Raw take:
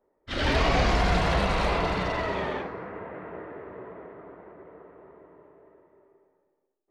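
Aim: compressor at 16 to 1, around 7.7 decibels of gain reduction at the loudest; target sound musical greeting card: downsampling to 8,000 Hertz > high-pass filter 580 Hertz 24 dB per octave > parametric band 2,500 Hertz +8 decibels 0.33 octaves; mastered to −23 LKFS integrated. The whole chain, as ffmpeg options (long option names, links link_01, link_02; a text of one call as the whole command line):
ffmpeg -i in.wav -af "acompressor=threshold=-26dB:ratio=16,aresample=8000,aresample=44100,highpass=frequency=580:width=0.5412,highpass=frequency=580:width=1.3066,equalizer=frequency=2500:width_type=o:width=0.33:gain=8,volume=10.5dB" out.wav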